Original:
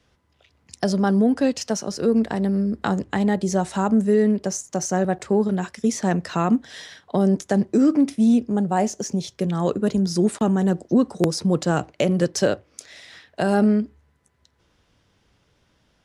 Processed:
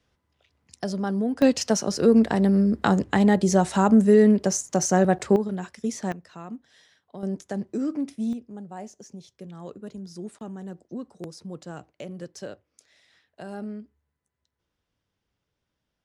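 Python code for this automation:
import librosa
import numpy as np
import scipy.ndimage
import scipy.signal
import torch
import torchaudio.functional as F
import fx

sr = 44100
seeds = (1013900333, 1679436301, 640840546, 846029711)

y = fx.gain(x, sr, db=fx.steps((0.0, -7.5), (1.42, 2.0), (5.36, -7.0), (6.12, -18.5), (7.23, -10.5), (8.33, -17.5)))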